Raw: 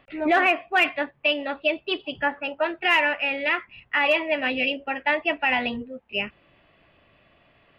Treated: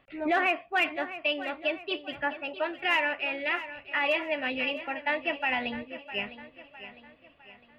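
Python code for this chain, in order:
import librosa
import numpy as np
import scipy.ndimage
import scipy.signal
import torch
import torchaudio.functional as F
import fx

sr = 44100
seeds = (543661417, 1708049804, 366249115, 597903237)

y = fx.echo_feedback(x, sr, ms=656, feedback_pct=45, wet_db=-13.5)
y = F.gain(torch.from_numpy(y), -6.0).numpy()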